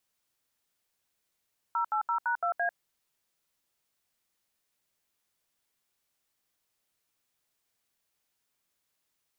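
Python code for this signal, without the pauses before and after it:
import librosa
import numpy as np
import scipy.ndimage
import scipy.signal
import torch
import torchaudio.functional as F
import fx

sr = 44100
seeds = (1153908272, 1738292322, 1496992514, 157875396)

y = fx.dtmf(sr, digits='080#2A', tone_ms=96, gap_ms=73, level_db=-28.5)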